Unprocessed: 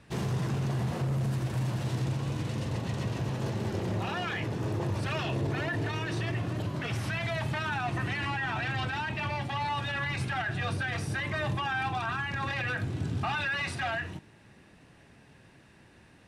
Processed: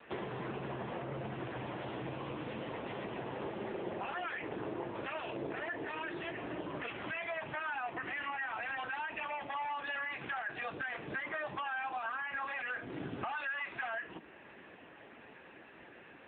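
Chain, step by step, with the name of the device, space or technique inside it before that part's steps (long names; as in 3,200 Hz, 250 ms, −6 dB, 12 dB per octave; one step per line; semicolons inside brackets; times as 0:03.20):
voicemail (band-pass filter 350–3,100 Hz; downward compressor 6 to 1, threshold −45 dBFS, peak gain reduction 15.5 dB; level +9.5 dB; AMR narrowband 6.7 kbit/s 8,000 Hz)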